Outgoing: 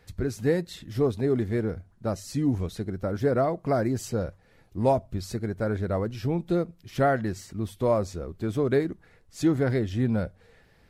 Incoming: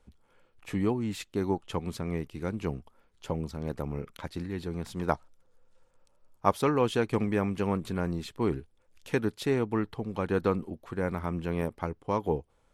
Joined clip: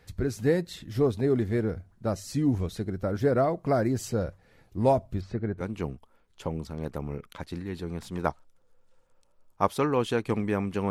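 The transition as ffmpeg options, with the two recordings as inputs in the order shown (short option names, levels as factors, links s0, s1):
-filter_complex "[0:a]asplit=3[s0][s1][s2];[s0]afade=t=out:st=5.2:d=0.02[s3];[s1]lowpass=2200,afade=t=in:st=5.2:d=0.02,afade=t=out:st=5.63:d=0.02[s4];[s2]afade=t=in:st=5.63:d=0.02[s5];[s3][s4][s5]amix=inputs=3:normalize=0,apad=whole_dur=10.9,atrim=end=10.9,atrim=end=5.63,asetpts=PTS-STARTPTS[s6];[1:a]atrim=start=2.41:end=7.74,asetpts=PTS-STARTPTS[s7];[s6][s7]acrossfade=d=0.06:c1=tri:c2=tri"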